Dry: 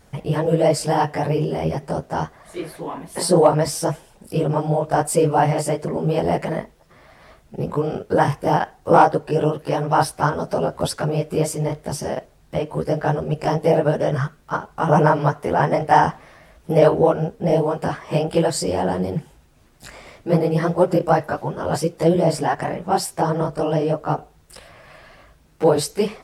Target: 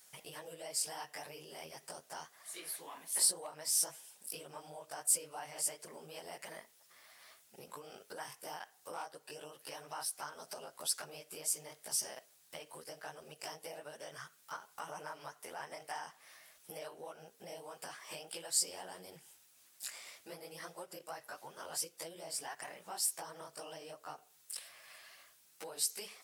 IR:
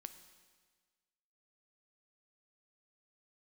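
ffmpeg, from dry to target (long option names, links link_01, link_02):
-af "acompressor=threshold=-26dB:ratio=4,aderivative,volume=1.5dB"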